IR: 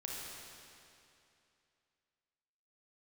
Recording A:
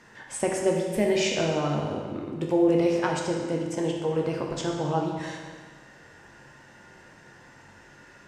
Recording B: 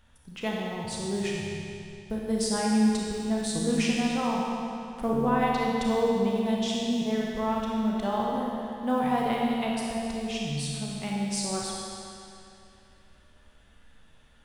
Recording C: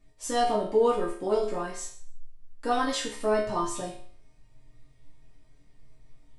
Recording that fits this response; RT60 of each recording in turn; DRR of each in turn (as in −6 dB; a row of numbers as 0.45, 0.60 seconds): B; 1.6, 2.7, 0.55 seconds; −0.5, −3.5, −7.5 decibels